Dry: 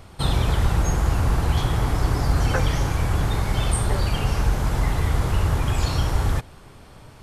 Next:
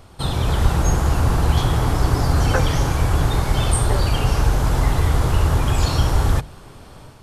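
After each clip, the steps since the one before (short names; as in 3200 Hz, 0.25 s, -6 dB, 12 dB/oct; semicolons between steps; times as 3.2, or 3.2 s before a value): bell 2100 Hz -3.5 dB 0.67 oct; notches 50/100/150/200 Hz; AGC gain up to 5 dB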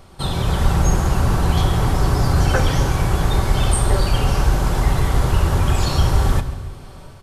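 feedback echo 0.138 s, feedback 51%, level -16 dB; shoebox room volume 3500 m³, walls furnished, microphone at 1.1 m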